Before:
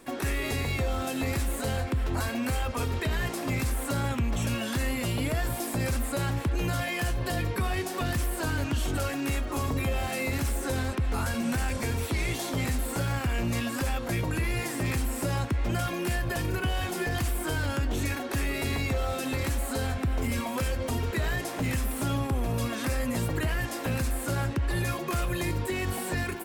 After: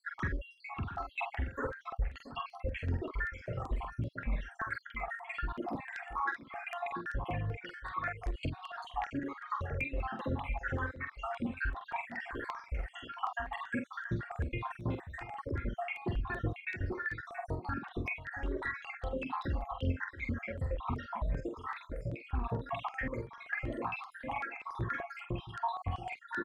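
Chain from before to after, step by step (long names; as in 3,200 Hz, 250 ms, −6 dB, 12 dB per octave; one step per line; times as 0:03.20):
time-frequency cells dropped at random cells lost 79%
reverb reduction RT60 1.2 s
in parallel at 0 dB: downward compressor, threshold −38 dBFS, peak gain reduction 13 dB
on the sum: brickwall limiter −26.5 dBFS, peak gain reduction 8 dB
speech leveller 0.5 s
auto-filter low-pass saw down 5.1 Hz 830–2,400 Hz
double-tracking delay 46 ms −6 dB
on a send: single-tap delay 678 ms −12.5 dB
on the sum: step-sequenced phaser 5.2 Hz 720–7,800 Hz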